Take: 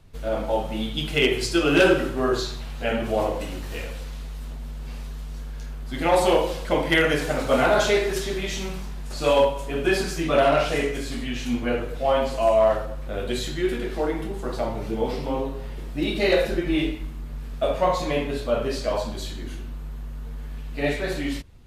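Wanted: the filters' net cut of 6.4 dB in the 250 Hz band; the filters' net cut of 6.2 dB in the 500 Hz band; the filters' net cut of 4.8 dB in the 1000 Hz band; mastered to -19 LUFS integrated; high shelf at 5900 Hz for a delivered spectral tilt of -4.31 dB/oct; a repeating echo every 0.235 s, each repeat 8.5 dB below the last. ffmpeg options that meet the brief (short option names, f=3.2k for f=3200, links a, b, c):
-af "equalizer=f=250:t=o:g=-6.5,equalizer=f=500:t=o:g=-5,equalizer=f=1k:t=o:g=-4,highshelf=f=5.9k:g=-3.5,aecho=1:1:235|470|705|940:0.376|0.143|0.0543|0.0206,volume=9.5dB"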